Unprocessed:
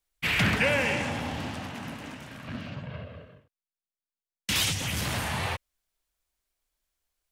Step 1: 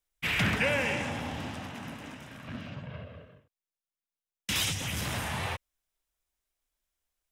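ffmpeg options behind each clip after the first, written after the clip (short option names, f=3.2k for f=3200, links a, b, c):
-af "bandreject=f=4.4k:w=12,volume=-3dB"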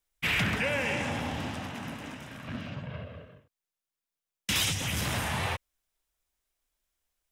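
-af "alimiter=limit=-20.5dB:level=0:latency=1:release=348,volume=2.5dB"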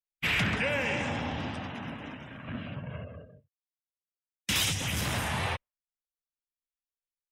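-af "afftdn=nr=25:nf=-51"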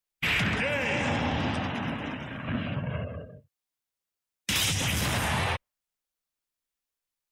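-af "alimiter=level_in=1dB:limit=-24dB:level=0:latency=1:release=122,volume=-1dB,volume=7dB"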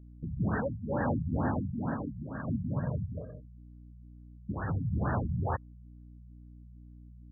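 -af "aeval=exprs='val(0)+0.00355*(sin(2*PI*60*n/s)+sin(2*PI*2*60*n/s)/2+sin(2*PI*3*60*n/s)/3+sin(2*PI*4*60*n/s)/4+sin(2*PI*5*60*n/s)/5)':c=same,afftfilt=real='re*lt(b*sr/1024,200*pow(1900/200,0.5+0.5*sin(2*PI*2.2*pts/sr)))':imag='im*lt(b*sr/1024,200*pow(1900/200,0.5+0.5*sin(2*PI*2.2*pts/sr)))':win_size=1024:overlap=0.75"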